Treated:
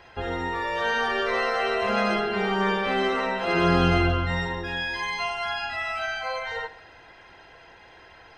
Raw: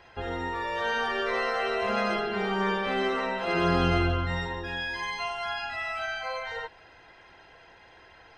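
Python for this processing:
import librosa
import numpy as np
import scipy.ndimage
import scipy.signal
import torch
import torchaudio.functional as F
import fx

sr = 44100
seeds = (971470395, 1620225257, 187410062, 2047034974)

y = fx.echo_feedback(x, sr, ms=63, feedback_pct=59, wet_db=-17.0)
y = F.gain(torch.from_numpy(y), 3.5).numpy()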